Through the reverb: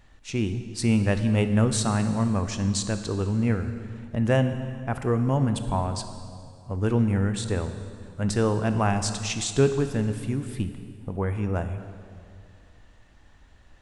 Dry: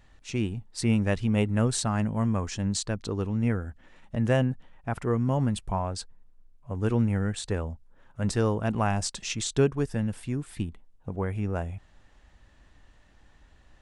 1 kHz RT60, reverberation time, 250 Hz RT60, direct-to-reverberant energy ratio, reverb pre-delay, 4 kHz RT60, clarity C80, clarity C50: 2.2 s, 2.3 s, 2.5 s, 8.5 dB, 21 ms, 1.9 s, 10.5 dB, 9.5 dB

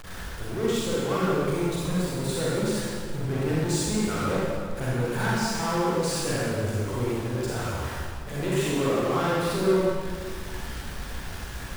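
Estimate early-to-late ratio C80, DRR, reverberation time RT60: -1.5 dB, -7.5 dB, 1.9 s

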